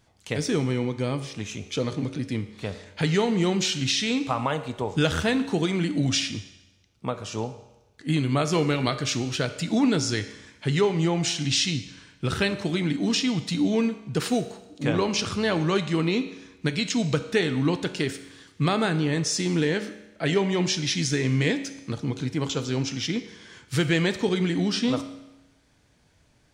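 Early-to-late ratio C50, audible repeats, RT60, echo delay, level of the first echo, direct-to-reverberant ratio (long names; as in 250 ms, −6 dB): 12.0 dB, no echo audible, 1.0 s, no echo audible, no echo audible, 9.0 dB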